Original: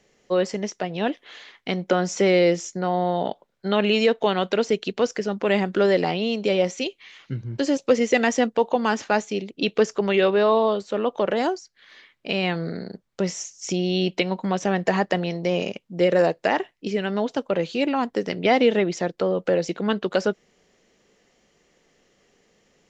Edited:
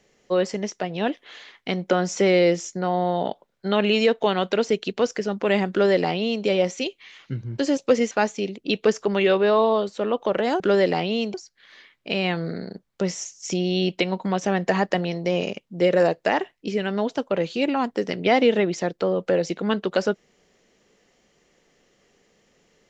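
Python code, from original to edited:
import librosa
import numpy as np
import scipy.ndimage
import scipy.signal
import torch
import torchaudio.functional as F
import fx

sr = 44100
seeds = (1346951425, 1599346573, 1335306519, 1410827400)

y = fx.edit(x, sr, fx.duplicate(start_s=5.71, length_s=0.74, to_s=11.53),
    fx.cut(start_s=8.11, length_s=0.93), tone=tone)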